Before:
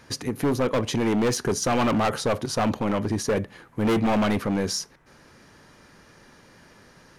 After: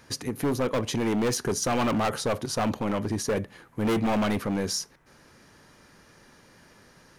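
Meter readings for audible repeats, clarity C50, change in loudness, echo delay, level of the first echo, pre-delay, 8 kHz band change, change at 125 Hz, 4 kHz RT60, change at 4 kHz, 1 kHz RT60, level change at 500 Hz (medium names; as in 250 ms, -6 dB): no echo, no reverb, -3.0 dB, no echo, no echo, no reverb, -1.0 dB, -3.0 dB, no reverb, -2.0 dB, no reverb, -3.0 dB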